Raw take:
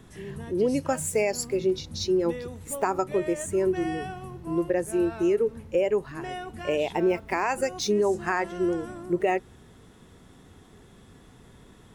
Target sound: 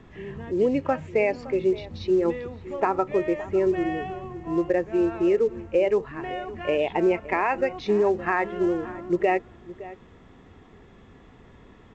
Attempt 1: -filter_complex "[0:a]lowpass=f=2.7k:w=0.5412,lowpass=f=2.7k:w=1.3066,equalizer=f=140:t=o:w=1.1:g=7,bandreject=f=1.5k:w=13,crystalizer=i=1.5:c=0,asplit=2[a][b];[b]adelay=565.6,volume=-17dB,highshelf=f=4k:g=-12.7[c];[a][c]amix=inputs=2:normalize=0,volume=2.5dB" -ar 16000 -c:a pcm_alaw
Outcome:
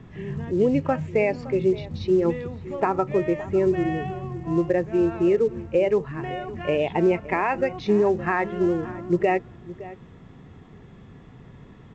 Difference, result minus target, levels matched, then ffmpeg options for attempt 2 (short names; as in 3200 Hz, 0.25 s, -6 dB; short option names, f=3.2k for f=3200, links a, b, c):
125 Hz band +7.0 dB
-filter_complex "[0:a]lowpass=f=2.7k:w=0.5412,lowpass=f=2.7k:w=1.3066,equalizer=f=140:t=o:w=1.1:g=-4,bandreject=f=1.5k:w=13,crystalizer=i=1.5:c=0,asplit=2[a][b];[b]adelay=565.6,volume=-17dB,highshelf=f=4k:g=-12.7[c];[a][c]amix=inputs=2:normalize=0,volume=2.5dB" -ar 16000 -c:a pcm_alaw